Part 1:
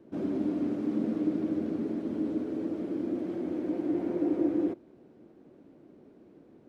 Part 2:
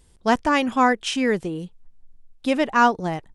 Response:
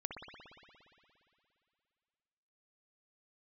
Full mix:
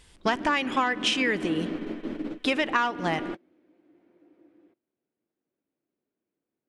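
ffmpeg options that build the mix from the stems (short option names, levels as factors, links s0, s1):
-filter_complex "[0:a]volume=0.891[s0];[1:a]acontrast=79,volume=0.335,asplit=3[s1][s2][s3];[s2]volume=0.133[s4];[s3]apad=whole_len=294878[s5];[s0][s5]sidechaingate=range=0.0251:threshold=0.00447:ratio=16:detection=peak[s6];[2:a]atrim=start_sample=2205[s7];[s4][s7]afir=irnorm=-1:irlink=0[s8];[s6][s1][s8]amix=inputs=3:normalize=0,equalizer=f=2400:w=0.45:g=12.5,acompressor=threshold=0.0891:ratio=12"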